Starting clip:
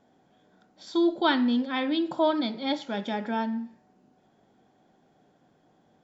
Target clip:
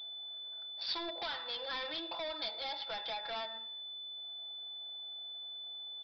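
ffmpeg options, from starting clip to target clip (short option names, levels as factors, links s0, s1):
-af "highpass=f=610:w=0.5412,highpass=f=610:w=1.3066,equalizer=f=2800:t=o:w=0.27:g=5,aecho=1:1:6:0.8,acompressor=threshold=0.02:ratio=5,aresample=16000,asoftclip=type=hard:threshold=0.0106,aresample=44100,aexciter=amount=3.8:drive=3.6:freq=4000,adynamicsmooth=sensitivity=5.5:basefreq=1100,aeval=exprs='val(0)+0.00251*sin(2*PI*3500*n/s)':c=same,crystalizer=i=4.5:c=0,aresample=11025,aresample=44100,volume=1.12"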